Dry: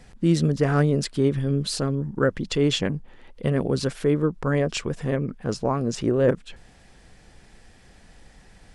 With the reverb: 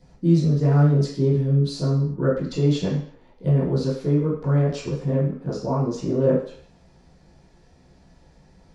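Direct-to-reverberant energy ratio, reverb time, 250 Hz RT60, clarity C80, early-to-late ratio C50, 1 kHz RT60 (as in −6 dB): −11.0 dB, 0.55 s, 0.50 s, 7.5 dB, 4.0 dB, 0.55 s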